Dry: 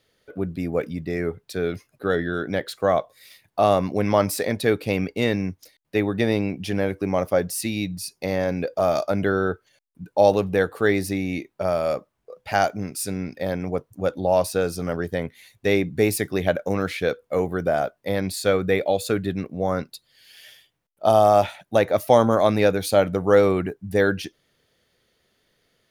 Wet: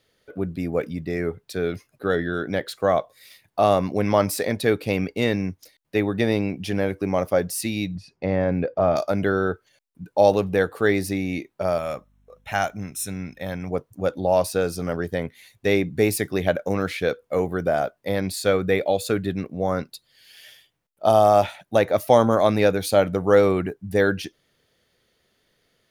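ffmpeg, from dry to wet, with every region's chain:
-filter_complex "[0:a]asettb=1/sr,asplit=3[s0][s1][s2];[s0]atrim=end=7.954[s3];[s1]atrim=start=7.95:end=8.96,asetpts=PTS-STARTPTS,afade=t=in:d=0.004:c=qsin,afade=t=out:st=1.006:d=0.004:c=qsin,lowpass=2300,equalizer=f=88:w=0.37:g=5[s4];[s2]atrim=start=8.956[s5];[s3][s4]acrossfade=d=0.004:c1=hsin:c2=qsin[s6];[s6][s5]acrossfade=d=0.004:c1=qsin:c2=hsin,asettb=1/sr,asplit=3[s7][s8][s9];[s7]atrim=end=11.784[s10];[s8]atrim=start=11.78:end=13.71,asetpts=PTS-STARTPTS,afade=t=in:d=0.004:c=qsin,afade=t=out:st=1.926:d=0.004:c=qsin,equalizer=f=420:w=0.86:g=-8,aeval=exprs='val(0)+0.001*(sin(2*PI*50*n/s)+sin(2*PI*2*50*n/s)/2+sin(2*PI*3*50*n/s)/3+sin(2*PI*4*50*n/s)/4+sin(2*PI*5*50*n/s)/5)':c=same,asuperstop=centerf=4700:order=20:qfactor=6[s11];[s9]atrim=start=13.706[s12];[s10][s11]acrossfade=d=0.004:c1=hsin:c2=qsin[s13];[s13][s12]acrossfade=d=0.004:c1=qsin:c2=hsin"

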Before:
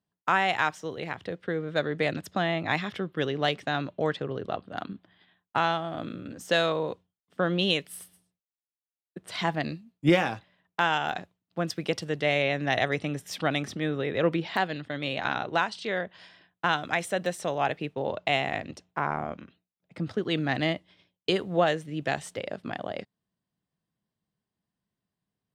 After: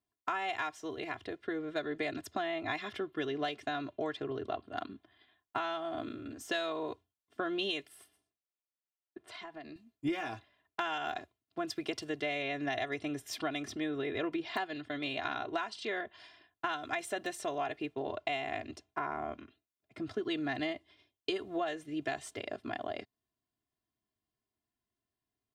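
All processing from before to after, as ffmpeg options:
-filter_complex "[0:a]asettb=1/sr,asplit=3[s0][s1][s2];[s0]atrim=end=7.884[s3];[s1]atrim=start=7.88:end=9.76,asetpts=PTS-STARTPTS,afade=t=in:d=0.004:c=qsin,afade=t=out:st=1.876:d=0.004:c=qsin,lowshelf=f=150:g=-9.5,acompressor=threshold=0.0126:ratio=6:attack=3.2:release=140:knee=1:detection=peak,lowpass=f=2900:p=1[s4];[s2]atrim=start=9.756[s5];[s3][s4]acrossfade=d=0.004:c1=hsin:c2=qsin[s6];[s6][s5]acrossfade=d=0.004:c1=qsin:c2=hsin,aecho=1:1:2.9:0.87,acompressor=threshold=0.0562:ratio=6,volume=0.501"

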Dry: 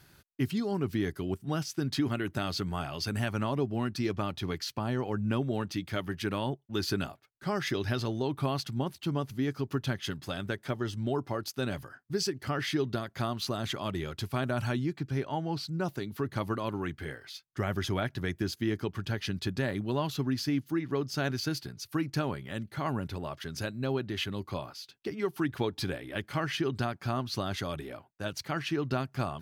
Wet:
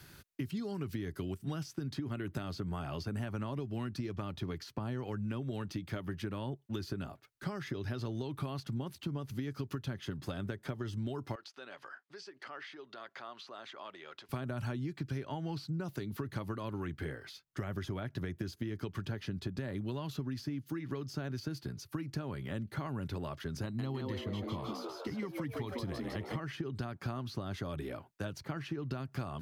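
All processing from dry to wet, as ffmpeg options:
-filter_complex "[0:a]asettb=1/sr,asplit=3[s0][s1][s2];[s0]atrim=end=11.354[s3];[s1]atrim=start=11.35:end=14.29,asetpts=PTS-STARTPTS,afade=t=in:d=0.004:c=qsin,afade=t=out:st=2.936:d=0.004:c=qsin,acompressor=threshold=0.01:ratio=4:attack=3.2:release=140:knee=1:detection=peak,highpass=690,lowpass=4300[s4];[s2]atrim=start=14.286[s5];[s3][s4]acrossfade=d=0.004:c1=hsin:c2=qsin[s6];[s6][s5]acrossfade=d=0.004:c1=qsin:c2=hsin,asettb=1/sr,asplit=3[s7][s8][s9];[s7]atrim=end=23.634[s10];[s8]atrim=start=23.63:end=26.4,asetpts=PTS-STARTPTS,afade=t=in:d=0.004:c=qsin,afade=t=out:st=2.766:d=0.004:c=qsin,aecho=1:1:1:0.53,atrim=end_sample=122157,asplit=8[s11][s12][s13][s14][s15][s16][s17][s18];[s12]adelay=157,afreqshift=120,volume=0.531[s19];[s13]adelay=314,afreqshift=240,volume=0.282[s20];[s14]adelay=471,afreqshift=360,volume=0.15[s21];[s15]adelay=628,afreqshift=480,volume=0.0794[s22];[s16]adelay=785,afreqshift=600,volume=0.0417[s23];[s17]adelay=942,afreqshift=720,volume=0.0221[s24];[s18]adelay=1099,afreqshift=840,volume=0.0117[s25];[s11][s19][s20][s21][s22][s23][s24][s25]amix=inputs=8:normalize=0,atrim=end_sample=122157[s26];[s9]atrim=start=26.396[s27];[s10][s26]acrossfade=d=0.004:c1=hsin:c2=qsin[s28];[s28][s27]acrossfade=d=0.004:c1=qsin:c2=hsin,acompressor=threshold=0.0224:ratio=6,equalizer=f=750:w=2:g=-3.5,acrossover=split=140|1300[s29][s30][s31];[s29]acompressor=threshold=0.00631:ratio=4[s32];[s30]acompressor=threshold=0.00794:ratio=4[s33];[s31]acompressor=threshold=0.00178:ratio=4[s34];[s32][s33][s34]amix=inputs=3:normalize=0,volume=1.58"

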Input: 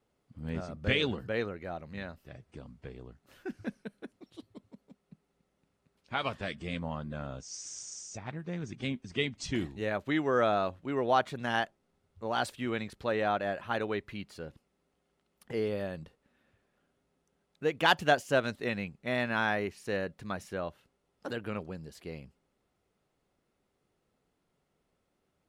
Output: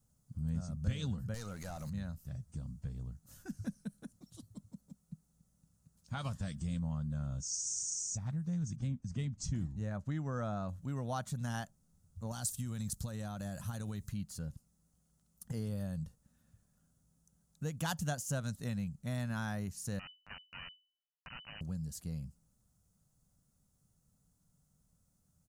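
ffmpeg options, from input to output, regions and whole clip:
-filter_complex "[0:a]asettb=1/sr,asplit=3[s0][s1][s2];[s0]atrim=end=1.344[s3];[s1]atrim=start=1.34:end=1.9,asetpts=PTS-STARTPTS,afade=t=in:d=0.004:c=qsin,afade=t=out:st=0.556:d=0.004:c=qsin,highshelf=f=5700:g=12,acompressor=threshold=0.00891:ratio=3:attack=3.2:release=140:knee=1:detection=peak,asplit=2[s4][s5];[s5]highpass=f=720:p=1,volume=10,asoftclip=type=tanh:threshold=0.0376[s6];[s4][s6]amix=inputs=2:normalize=0,lowpass=f=5300:p=1,volume=0.501[s7];[s2]atrim=start=1.896[s8];[s3][s7]acrossfade=d=0.004:c1=hsin:c2=qsin[s9];[s9][s8]acrossfade=d=0.004:c1=qsin:c2=hsin,asettb=1/sr,asplit=3[s10][s11][s12];[s10]atrim=end=8.764[s13];[s11]atrim=start=8.76:end=10.69,asetpts=PTS-STARTPTS,afade=t=in:d=0.004:c=qsin,afade=t=out:st=1.926:d=0.004:c=qsin,equalizer=f=3600:w=1.3:g=-5.5,adynamicsmooth=sensitivity=1:basefreq=5900[s14];[s12]atrim=start=10.686[s15];[s13][s14]acrossfade=d=0.004:c1=hsin:c2=qsin[s16];[s16][s15]acrossfade=d=0.004:c1=qsin:c2=hsin,asettb=1/sr,asplit=3[s17][s18][s19];[s17]atrim=end=12.314[s20];[s18]atrim=start=12.31:end=14.09,asetpts=PTS-STARTPTS,afade=t=in:d=0.004:c=qsin,afade=t=out:st=1.776:d=0.004:c=qsin,bass=f=250:g=4,treble=f=4000:g=11,acompressor=threshold=0.0224:ratio=10:attack=3.2:release=140:knee=1:detection=peak[s21];[s19]atrim=start=14.086[s22];[s20][s21]acrossfade=d=0.004:c1=hsin:c2=qsin[s23];[s23][s22]acrossfade=d=0.004:c1=qsin:c2=hsin,asettb=1/sr,asplit=3[s24][s25][s26];[s24]atrim=end=19.994[s27];[s25]atrim=start=19.99:end=21.61,asetpts=PTS-STARTPTS,afade=t=in:d=0.004:c=qsin,afade=t=out:st=1.616:d=0.004:c=qsin,acrusher=bits=3:dc=4:mix=0:aa=0.000001,lowpass=f=2600:t=q:w=0.5098,lowpass=f=2600:t=q:w=0.6013,lowpass=f=2600:t=q:w=0.9,lowpass=f=2600:t=q:w=2.563,afreqshift=-3000,acompressor=mode=upward:threshold=0.00398:ratio=2.5:attack=3.2:release=140:knee=2.83:detection=peak[s28];[s26]atrim=start=21.606[s29];[s27][s28]acrossfade=d=0.004:c1=hsin:c2=qsin[s30];[s30][s29]acrossfade=d=0.004:c1=qsin:c2=hsin,firequalizer=gain_entry='entry(160,0);entry(370,-25);entry(530,-18);entry(1400,-16);entry(2200,-24);entry(6500,2)':delay=0.05:min_phase=1,acompressor=threshold=0.00501:ratio=2,volume=2.82"

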